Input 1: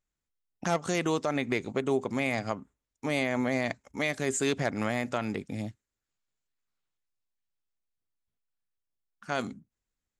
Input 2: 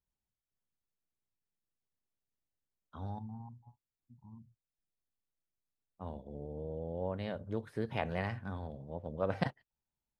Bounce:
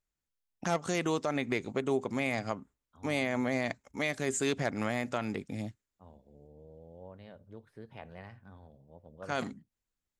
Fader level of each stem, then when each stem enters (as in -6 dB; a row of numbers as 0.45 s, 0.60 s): -2.5 dB, -12.0 dB; 0.00 s, 0.00 s